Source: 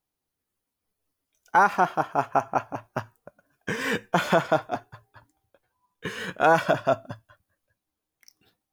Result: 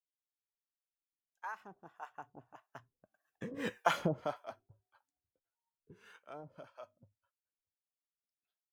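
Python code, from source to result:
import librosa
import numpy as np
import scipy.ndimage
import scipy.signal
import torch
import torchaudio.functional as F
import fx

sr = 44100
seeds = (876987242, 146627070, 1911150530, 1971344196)

y = fx.doppler_pass(x, sr, speed_mps=25, closest_m=5.9, pass_at_s=3.8)
y = fx.harmonic_tremolo(y, sr, hz=1.7, depth_pct=100, crossover_hz=540.0)
y = y * 10.0 ** (-3.0 / 20.0)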